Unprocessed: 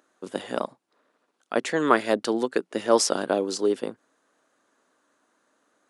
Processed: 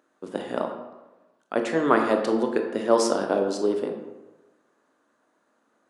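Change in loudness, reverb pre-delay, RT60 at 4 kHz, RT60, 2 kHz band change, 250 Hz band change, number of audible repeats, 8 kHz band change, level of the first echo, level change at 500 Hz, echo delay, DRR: +0.5 dB, 19 ms, 0.60 s, 1.1 s, −1.5 dB, +2.0 dB, no echo audible, −6.0 dB, no echo audible, +1.0 dB, no echo audible, 3.5 dB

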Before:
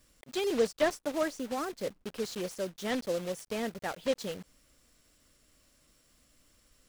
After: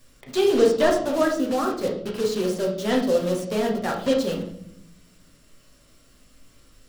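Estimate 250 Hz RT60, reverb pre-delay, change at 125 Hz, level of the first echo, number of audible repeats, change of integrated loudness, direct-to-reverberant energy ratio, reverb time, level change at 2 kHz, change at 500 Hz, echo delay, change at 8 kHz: 1.3 s, 7 ms, +13.0 dB, no echo audible, no echo audible, +10.5 dB, −1.5 dB, 0.70 s, +7.5 dB, +11.0 dB, no echo audible, +6.5 dB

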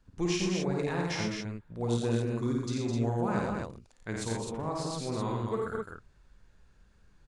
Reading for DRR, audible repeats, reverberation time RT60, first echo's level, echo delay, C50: no reverb audible, 5, no reverb audible, −3.5 dB, 52 ms, no reverb audible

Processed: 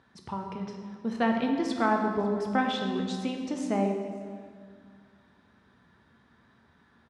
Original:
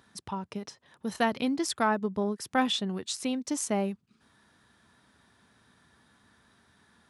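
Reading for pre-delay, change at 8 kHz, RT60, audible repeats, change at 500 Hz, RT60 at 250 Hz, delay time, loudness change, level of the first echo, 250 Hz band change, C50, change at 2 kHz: 5 ms, −12.5 dB, 2.0 s, 1, +2.0 dB, 2.3 s, 548 ms, +1.0 dB, −22.5 dB, +2.5 dB, 4.0 dB, 0.0 dB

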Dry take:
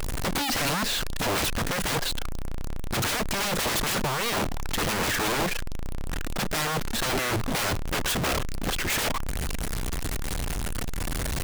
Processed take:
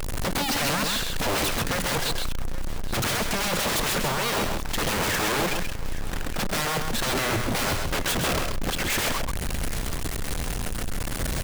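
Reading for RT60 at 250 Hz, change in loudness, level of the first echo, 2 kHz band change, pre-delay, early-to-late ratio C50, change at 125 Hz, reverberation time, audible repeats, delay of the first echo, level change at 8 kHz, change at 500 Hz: no reverb audible, +1.0 dB, −5.0 dB, +1.5 dB, no reverb audible, no reverb audible, +1.0 dB, no reverb audible, 2, 133 ms, +1.5 dB, +2.0 dB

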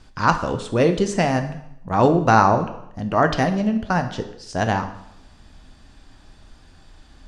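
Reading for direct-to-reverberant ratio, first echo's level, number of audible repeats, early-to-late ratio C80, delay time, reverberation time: 7.0 dB, no echo audible, no echo audible, 13.5 dB, no echo audible, 0.80 s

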